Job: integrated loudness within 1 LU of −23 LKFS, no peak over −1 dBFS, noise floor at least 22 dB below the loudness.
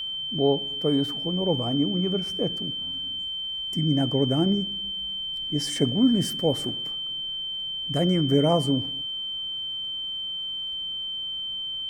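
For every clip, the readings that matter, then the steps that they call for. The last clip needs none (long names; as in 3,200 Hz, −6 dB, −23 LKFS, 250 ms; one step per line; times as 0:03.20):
crackle rate 38 per second; interfering tone 3,100 Hz; level of the tone −29 dBFS; integrated loudness −25.5 LKFS; sample peak −10.0 dBFS; target loudness −23.0 LKFS
→ click removal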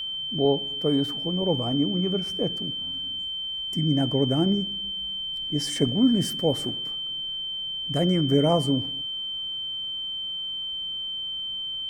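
crackle rate 1.0 per second; interfering tone 3,100 Hz; level of the tone −29 dBFS
→ notch filter 3,100 Hz, Q 30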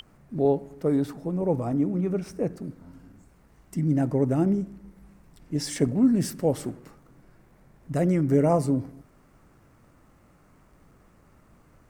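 interfering tone none found; integrated loudness −25.5 LKFS; sample peak −10.5 dBFS; target loudness −23.0 LKFS
→ level +2.5 dB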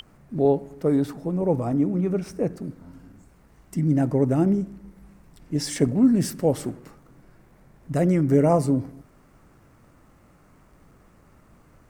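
integrated loudness −23.0 LKFS; sample peak −8.0 dBFS; background noise floor −56 dBFS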